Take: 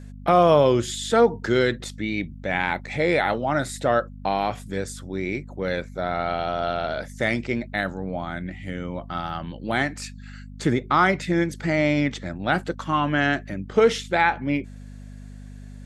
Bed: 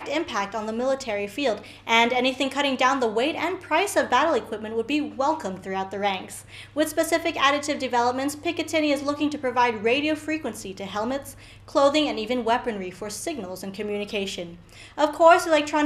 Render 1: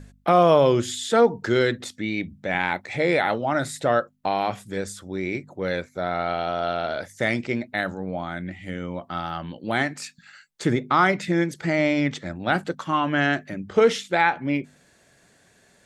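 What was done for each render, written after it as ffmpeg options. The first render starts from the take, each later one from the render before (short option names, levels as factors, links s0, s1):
-af "bandreject=f=50:t=h:w=4,bandreject=f=100:t=h:w=4,bandreject=f=150:t=h:w=4,bandreject=f=200:t=h:w=4,bandreject=f=250:t=h:w=4"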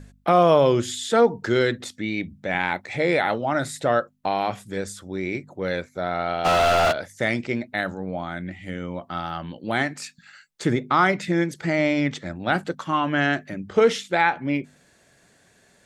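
-filter_complex "[0:a]asplit=3[s0][s1][s2];[s0]afade=t=out:st=6.44:d=0.02[s3];[s1]asplit=2[s4][s5];[s5]highpass=f=720:p=1,volume=79.4,asoftclip=type=tanh:threshold=0.251[s6];[s4][s6]amix=inputs=2:normalize=0,lowpass=f=3400:p=1,volume=0.501,afade=t=in:st=6.44:d=0.02,afade=t=out:st=6.91:d=0.02[s7];[s2]afade=t=in:st=6.91:d=0.02[s8];[s3][s7][s8]amix=inputs=3:normalize=0"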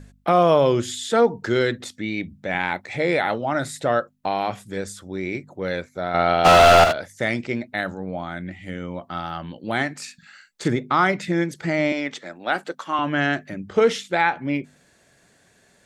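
-filter_complex "[0:a]asettb=1/sr,asplit=3[s0][s1][s2];[s0]atrim=end=10.034[s3];[s1]atrim=start=10.03:end=10.68,asetpts=PTS-STARTPTS,afade=t=in:d=0.004:c=qsin,afade=t=out:st=0.646:d=0.004:c=qsin,asplit=2[s4][s5];[s5]adelay=44,volume=0.531[s6];[s4][s6]amix=inputs=2:normalize=0,atrim=end_sample=28665[s7];[s2]atrim=start=10.676[s8];[s3][s7]acrossfade=d=0.004:c1=hsin:c2=qsin[s9];[s9][s8]acrossfade=d=0.004:c1=qsin:c2=hsin,asettb=1/sr,asplit=3[s10][s11][s12];[s10]atrim=end=11.924[s13];[s11]atrim=start=11.92:end=12.99,asetpts=PTS-STARTPTS,afade=t=in:d=0.004:c=qsin,afade=t=out:st=1.066:d=0.004:c=qsin,highpass=370[s14];[s12]atrim=start=12.986[s15];[s13][s14]acrossfade=d=0.004:c1=hsin:c2=qsin[s16];[s16][s15]acrossfade=d=0.004:c1=qsin:c2=hsin,asplit=3[s17][s18][s19];[s17]atrim=end=6.142[s20];[s18]atrim=start=6.138:end=6.842,asetpts=PTS-STARTPTS,volume=2.24[s21];[s19]atrim=start=6.838[s22];[s20][s21]acrossfade=d=0.004:c1=hsin:c2=hsin[s23];[s23][s22]acrossfade=d=0.004:c1=hsin:c2=hsin"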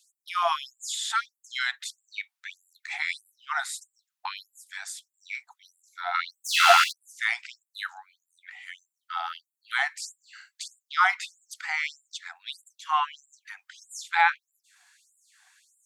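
-af "afftfilt=real='re*gte(b*sr/1024,680*pow(7200/680,0.5+0.5*sin(2*PI*1.6*pts/sr)))':imag='im*gte(b*sr/1024,680*pow(7200/680,0.5+0.5*sin(2*PI*1.6*pts/sr)))':win_size=1024:overlap=0.75"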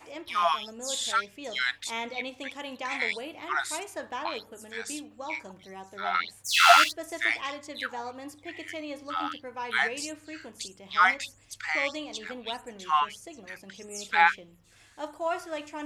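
-filter_complex "[1:a]volume=0.168[s0];[0:a][s0]amix=inputs=2:normalize=0"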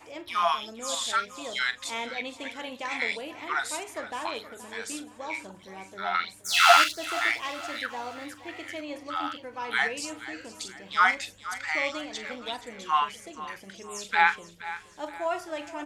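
-filter_complex "[0:a]asplit=2[s0][s1];[s1]adelay=41,volume=0.211[s2];[s0][s2]amix=inputs=2:normalize=0,aecho=1:1:473|946|1419|1892:0.178|0.0782|0.0344|0.0151"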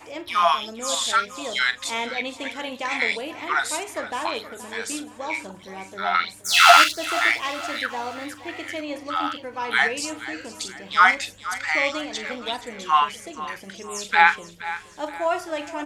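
-af "volume=2,alimiter=limit=0.891:level=0:latency=1"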